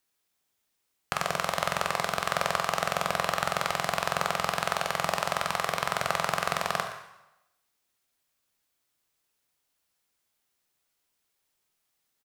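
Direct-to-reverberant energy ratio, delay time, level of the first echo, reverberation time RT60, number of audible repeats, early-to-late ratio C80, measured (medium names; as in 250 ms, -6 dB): 4.0 dB, 119 ms, -15.0 dB, 0.90 s, 1, 9.0 dB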